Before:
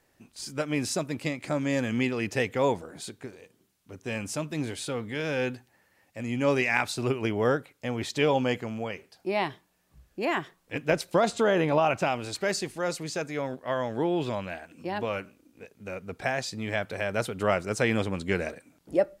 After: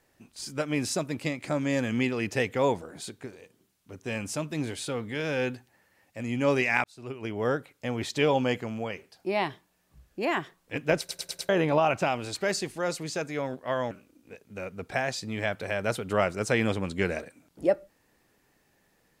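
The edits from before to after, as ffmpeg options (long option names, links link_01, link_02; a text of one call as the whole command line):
ffmpeg -i in.wav -filter_complex "[0:a]asplit=8[link_01][link_02][link_03][link_04][link_05][link_06][link_07][link_08];[link_01]atrim=end=6.84,asetpts=PTS-STARTPTS,afade=type=out:start_time=6.836:duration=0.004:curve=hsin[link_09];[link_02]atrim=start=6.84:end=11.092,asetpts=PTS-STARTPTS,afade=type=in:duration=0.88[link_10];[link_03]atrim=start=10.988:end=11.092[link_11];[link_04]atrim=start=10.988:end=11.092[link_12];[link_05]atrim=start=10.988:end=11.092[link_13];[link_06]atrim=start=10.988:end=11.092[link_14];[link_07]atrim=start=11.488:end=13.912[link_15];[link_08]atrim=start=15.208[link_16];[link_09][link_10]concat=n=2:v=0:a=1[link_17];[link_17][link_11]acrossfade=duration=0.004:curve1=hsin:curve2=hsin[link_18];[link_18][link_12]acrossfade=duration=0.004:curve1=hsin:curve2=hsin[link_19];[link_19][link_13]acrossfade=duration=0.004:curve1=hsin:curve2=hsin[link_20];[link_20][link_14]acrossfade=duration=0.004:curve1=hsin:curve2=hsin[link_21];[link_21][link_15]acrossfade=duration=0.004:curve1=hsin:curve2=hsin[link_22];[link_22][link_16]acrossfade=duration=0.004:curve1=hsin:curve2=hsin" out.wav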